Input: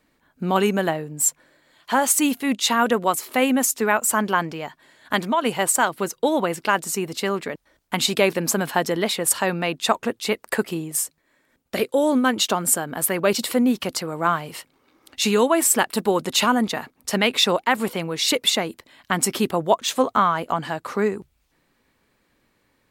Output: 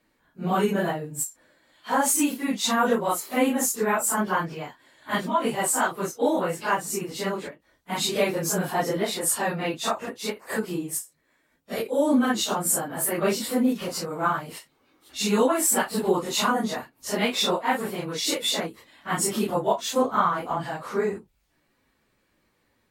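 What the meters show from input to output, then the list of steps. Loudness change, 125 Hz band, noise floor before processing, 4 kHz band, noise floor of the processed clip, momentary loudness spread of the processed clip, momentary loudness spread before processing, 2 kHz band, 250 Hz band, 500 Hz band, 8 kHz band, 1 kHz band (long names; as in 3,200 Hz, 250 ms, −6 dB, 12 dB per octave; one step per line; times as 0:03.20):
−3.5 dB, −3.0 dB, −68 dBFS, −5.5 dB, −70 dBFS, 10 LU, 8 LU, −5.0 dB, −3.0 dB, −3.5 dB, −4.0 dB, −3.5 dB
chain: random phases in long frames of 100 ms
dynamic equaliser 2,800 Hz, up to −4 dB, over −38 dBFS, Q 1.2
every ending faded ahead of time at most 260 dB per second
level −3 dB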